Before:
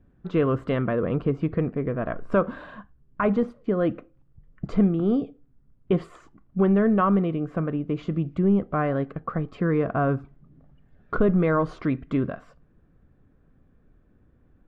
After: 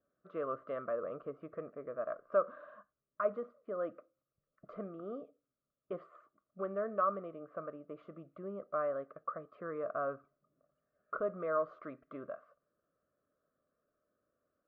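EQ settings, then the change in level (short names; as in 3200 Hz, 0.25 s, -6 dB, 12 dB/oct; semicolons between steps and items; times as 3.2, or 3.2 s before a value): double band-pass 860 Hz, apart 1 oct; -4.0 dB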